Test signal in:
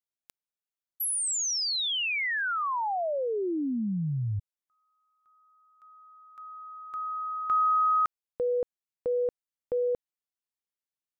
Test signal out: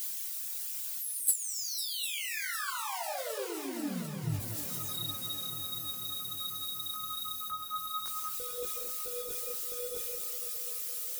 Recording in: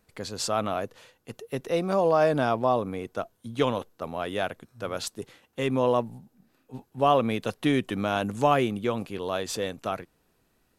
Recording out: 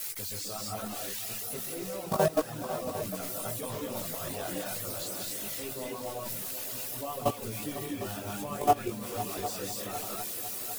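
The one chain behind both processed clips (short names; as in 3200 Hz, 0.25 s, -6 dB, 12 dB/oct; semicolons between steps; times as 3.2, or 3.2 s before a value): switching spikes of -18.5 dBFS; low shelf 140 Hz +8 dB; non-linear reverb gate 0.28 s rising, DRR -3 dB; level quantiser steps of 15 dB; chorus voices 4, 0.79 Hz, delay 19 ms, depth 1.8 ms; reverb removal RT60 0.65 s; multi-head echo 0.251 s, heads second and third, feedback 63%, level -13.5 dB; gain -2.5 dB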